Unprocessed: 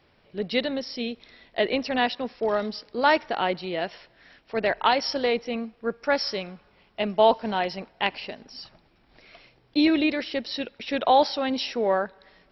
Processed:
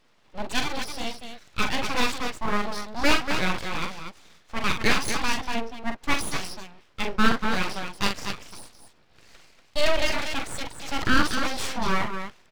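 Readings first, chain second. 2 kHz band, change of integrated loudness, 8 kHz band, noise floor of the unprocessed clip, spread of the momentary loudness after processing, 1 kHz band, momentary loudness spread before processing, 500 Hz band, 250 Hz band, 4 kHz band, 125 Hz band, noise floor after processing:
+3.5 dB, -1.5 dB, n/a, -62 dBFS, 14 LU, -3.0 dB, 14 LU, -7.5 dB, -2.5 dB, +1.0 dB, +7.5 dB, -59 dBFS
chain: loudspeakers at several distances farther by 15 m -6 dB, 82 m -7 dB; dynamic EQ 1900 Hz, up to +5 dB, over -39 dBFS, Q 1.9; full-wave rectifier

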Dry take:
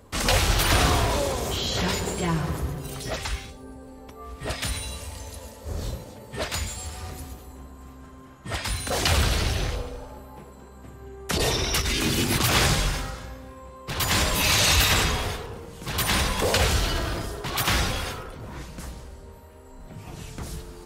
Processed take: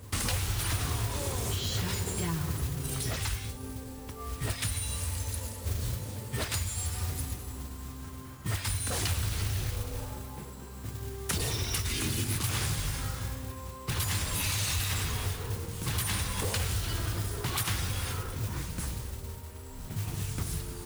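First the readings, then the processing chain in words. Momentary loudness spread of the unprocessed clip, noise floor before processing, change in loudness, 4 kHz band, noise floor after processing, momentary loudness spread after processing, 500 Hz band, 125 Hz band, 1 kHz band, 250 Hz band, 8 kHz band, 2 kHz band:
21 LU, -46 dBFS, -8.5 dB, -9.5 dB, -43 dBFS, 11 LU, -11.0 dB, -2.5 dB, -11.0 dB, -7.5 dB, -5.0 dB, -10.5 dB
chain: fifteen-band EQ 100 Hz +12 dB, 630 Hz -6 dB, 10000 Hz +9 dB; compressor 6:1, threshold -29 dBFS, peak gain reduction 17 dB; modulation noise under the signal 12 dB

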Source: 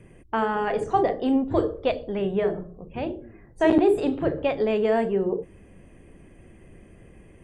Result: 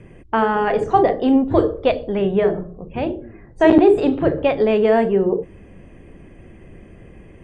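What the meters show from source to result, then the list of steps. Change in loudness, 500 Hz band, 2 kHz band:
+7.0 dB, +7.0 dB, +6.5 dB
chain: air absorption 76 m; gain +7 dB

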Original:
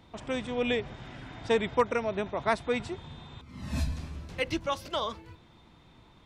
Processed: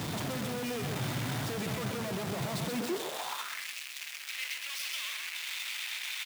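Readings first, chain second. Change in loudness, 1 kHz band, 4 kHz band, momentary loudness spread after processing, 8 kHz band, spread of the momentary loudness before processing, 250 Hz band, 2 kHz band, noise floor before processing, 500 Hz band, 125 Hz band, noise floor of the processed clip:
-4.0 dB, -6.5 dB, +3.5 dB, 4 LU, +11.0 dB, 16 LU, -2.0 dB, 0.0 dB, -57 dBFS, -8.5 dB, +1.5 dB, -43 dBFS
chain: infinite clipping; echo 0.128 s -5 dB; in parallel at -11 dB: requantised 6-bit, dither triangular; on the sum: high-pass sweep 130 Hz -> 2300 Hz, 2.57–3.68; gain -7 dB

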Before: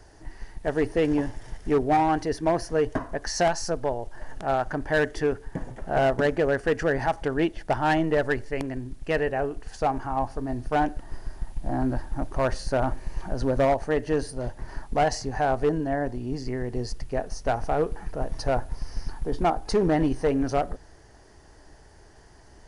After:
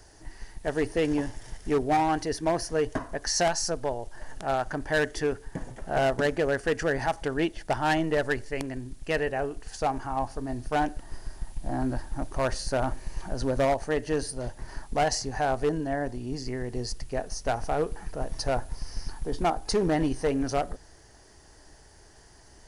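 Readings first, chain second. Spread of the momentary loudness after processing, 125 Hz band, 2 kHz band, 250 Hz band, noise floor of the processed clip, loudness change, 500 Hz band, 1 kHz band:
12 LU, -3.0 dB, -1.0 dB, -3.0 dB, -53 dBFS, -2.5 dB, -3.0 dB, -2.5 dB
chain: high shelf 3400 Hz +9.5 dB; gain -3 dB

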